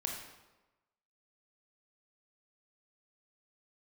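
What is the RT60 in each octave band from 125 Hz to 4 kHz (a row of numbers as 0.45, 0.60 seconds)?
1.0, 1.1, 1.1, 1.1, 0.90, 0.80 seconds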